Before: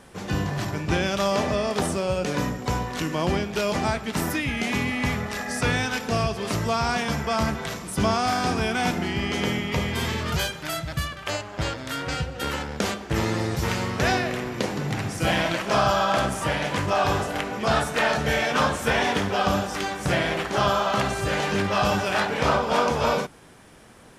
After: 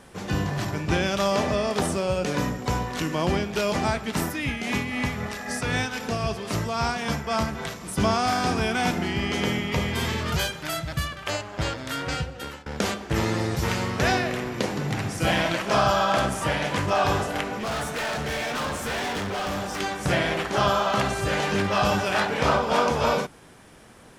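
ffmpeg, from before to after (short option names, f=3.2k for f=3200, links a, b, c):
-filter_complex "[0:a]asplit=3[a][b][c];[a]afade=t=out:st=4.18:d=0.02[d];[b]tremolo=f=3.8:d=0.46,afade=t=in:st=4.18:d=0.02,afade=t=out:st=7.96:d=0.02[e];[c]afade=t=in:st=7.96:d=0.02[f];[d][e][f]amix=inputs=3:normalize=0,asettb=1/sr,asplit=3[g][h][i];[g]atrim=end=17.544[j];[h]atrim=start=17.54:end=19.8,asetpts=PTS-STARTPTS,afade=t=in:d=0.004:c=qsin,afade=t=out:st=2.256:d=0.004:c=qsin,asoftclip=type=hard:threshold=-26.5dB[k];[i]atrim=start=19.796[l];[j][k]acrossfade=d=0.004:c1=hsin:c2=qsin[m];[m][l]acrossfade=d=0.004:c1=qsin:c2=hsin,asplit=2[n][o];[n]atrim=end=12.66,asetpts=PTS-STARTPTS,afade=t=out:st=12.15:d=0.51:silence=0.0707946[p];[o]atrim=start=12.66,asetpts=PTS-STARTPTS,afade=t=in:d=0.004:c=hsin:silence=0.0707946[q];[p][q]concat=n=2:v=0:a=1"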